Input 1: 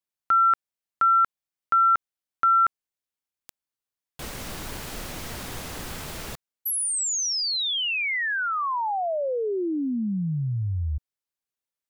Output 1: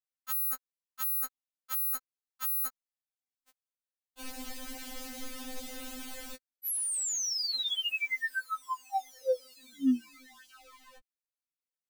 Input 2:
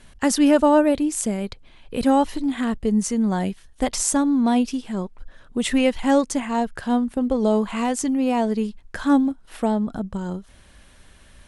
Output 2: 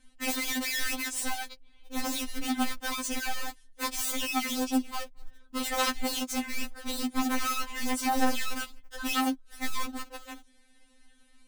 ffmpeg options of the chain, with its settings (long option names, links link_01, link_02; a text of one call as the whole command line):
ffmpeg -i in.wav -filter_complex "[0:a]equalizer=frequency=1100:width_type=o:width=1.1:gain=-5,asplit=2[link_01][link_02];[link_02]acrusher=bits=5:mix=0:aa=0.000001,volume=-4.5dB[link_03];[link_01][link_03]amix=inputs=2:normalize=0,aeval=exprs='(mod(5.96*val(0)+1,2)-1)/5.96':channel_layout=same,afftfilt=real='re*3.46*eq(mod(b,12),0)':imag='im*3.46*eq(mod(b,12),0)':win_size=2048:overlap=0.75,volume=-8dB" out.wav